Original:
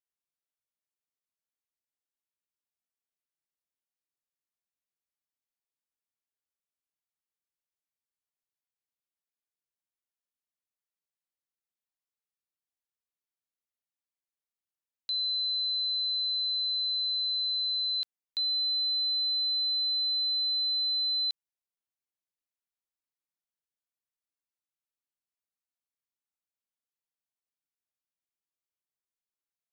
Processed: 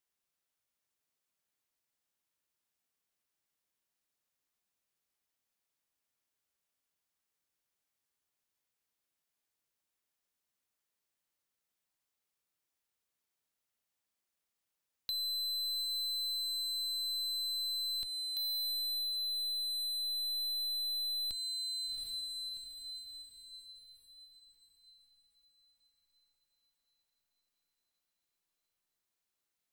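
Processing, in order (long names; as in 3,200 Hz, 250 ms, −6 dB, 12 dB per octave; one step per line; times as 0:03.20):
one-sided soft clipper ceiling −36 dBFS
feedback delay with all-pass diffusion 726 ms, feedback 48%, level −8 dB
gain into a clipping stage and back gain 34 dB
downward compressor, threshold −43 dBFS, peak gain reduction 7.5 dB
level +6.5 dB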